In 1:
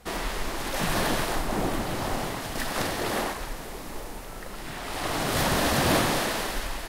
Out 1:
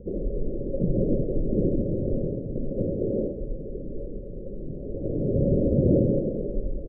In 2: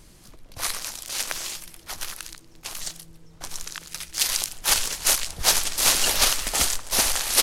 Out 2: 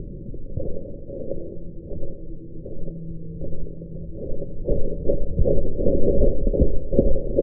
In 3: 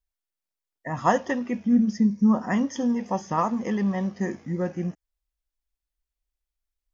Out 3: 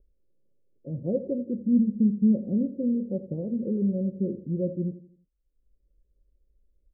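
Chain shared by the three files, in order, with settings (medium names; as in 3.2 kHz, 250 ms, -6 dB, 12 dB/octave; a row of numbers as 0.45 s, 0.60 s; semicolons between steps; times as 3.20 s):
upward compressor, threshold -42 dBFS; rippled Chebyshev low-pass 570 Hz, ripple 3 dB; feedback delay 84 ms, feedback 42%, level -14 dB; normalise loudness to -27 LUFS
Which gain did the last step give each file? +7.0 dB, +17.5 dB, +0.5 dB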